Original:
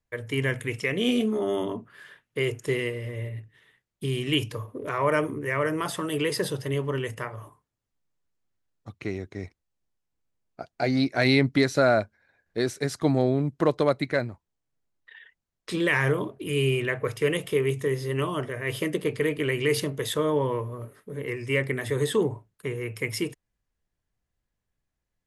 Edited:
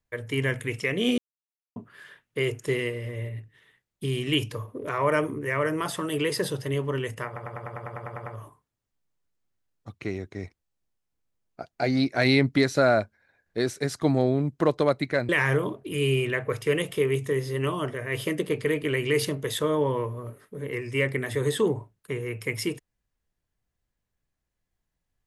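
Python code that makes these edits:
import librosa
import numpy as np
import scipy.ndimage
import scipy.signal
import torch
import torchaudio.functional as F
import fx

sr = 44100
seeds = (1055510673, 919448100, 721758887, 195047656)

y = fx.edit(x, sr, fx.silence(start_s=1.18, length_s=0.58),
    fx.stutter(start_s=7.26, slice_s=0.1, count=11),
    fx.cut(start_s=14.29, length_s=1.55), tone=tone)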